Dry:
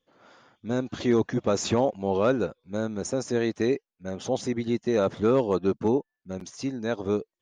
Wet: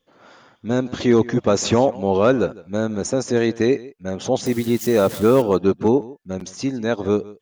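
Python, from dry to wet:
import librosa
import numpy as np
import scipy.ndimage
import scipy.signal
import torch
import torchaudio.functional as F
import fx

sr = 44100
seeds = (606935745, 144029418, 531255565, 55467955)

y = fx.crossing_spikes(x, sr, level_db=-30.0, at=(4.46, 5.42))
y = y + 10.0 ** (-20.0 / 20.0) * np.pad(y, (int(155 * sr / 1000.0), 0))[:len(y)]
y = y * librosa.db_to_amplitude(7.0)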